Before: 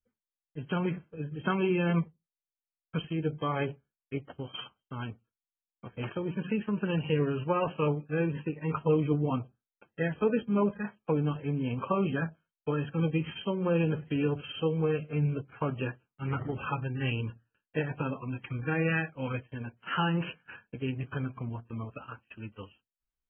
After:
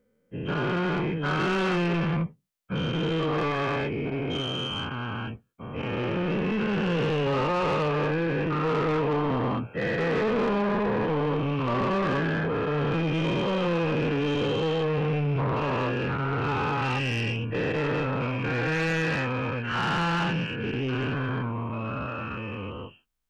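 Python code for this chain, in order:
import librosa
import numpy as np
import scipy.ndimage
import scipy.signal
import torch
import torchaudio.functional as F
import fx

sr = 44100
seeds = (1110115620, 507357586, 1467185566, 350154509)

y = fx.spec_dilate(x, sr, span_ms=480)
y = 10.0 ** (-24.0 / 20.0) * np.tanh(y / 10.0 ** (-24.0 / 20.0))
y = F.gain(torch.from_numpy(y), 2.0).numpy()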